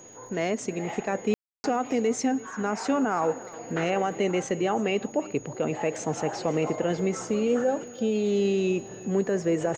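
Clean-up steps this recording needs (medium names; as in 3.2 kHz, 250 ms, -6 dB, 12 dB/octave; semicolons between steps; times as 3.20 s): de-click; band-stop 6.7 kHz, Q 30; room tone fill 1.34–1.64 s; inverse comb 336 ms -20 dB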